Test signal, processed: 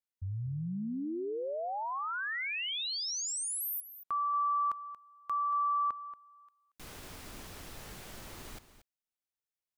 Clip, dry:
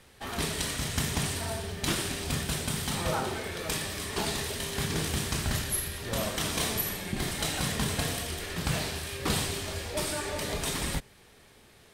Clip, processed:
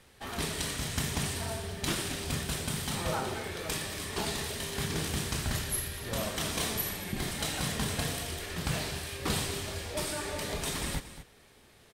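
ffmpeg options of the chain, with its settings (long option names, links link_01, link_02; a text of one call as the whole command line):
ffmpeg -i in.wav -af "aecho=1:1:231:0.211,volume=-2.5dB" out.wav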